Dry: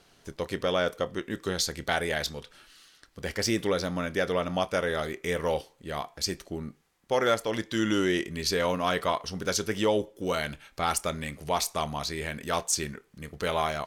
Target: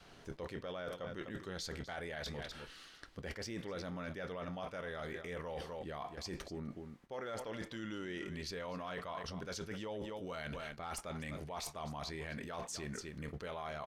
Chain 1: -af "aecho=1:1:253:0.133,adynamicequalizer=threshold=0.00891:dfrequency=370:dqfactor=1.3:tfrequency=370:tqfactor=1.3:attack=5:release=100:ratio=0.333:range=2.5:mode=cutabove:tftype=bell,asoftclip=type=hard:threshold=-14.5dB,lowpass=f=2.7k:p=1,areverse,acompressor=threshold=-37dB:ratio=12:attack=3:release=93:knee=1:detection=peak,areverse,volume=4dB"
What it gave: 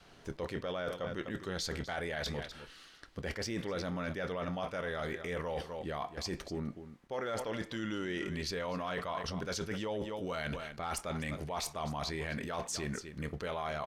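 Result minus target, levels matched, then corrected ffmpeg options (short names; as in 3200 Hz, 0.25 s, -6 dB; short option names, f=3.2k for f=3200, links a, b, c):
compressor: peak gain reduction -6 dB
-af "aecho=1:1:253:0.133,adynamicequalizer=threshold=0.00891:dfrequency=370:dqfactor=1.3:tfrequency=370:tqfactor=1.3:attack=5:release=100:ratio=0.333:range=2.5:mode=cutabove:tftype=bell,asoftclip=type=hard:threshold=-14.5dB,lowpass=f=2.7k:p=1,areverse,acompressor=threshold=-43.5dB:ratio=12:attack=3:release=93:knee=1:detection=peak,areverse,volume=4dB"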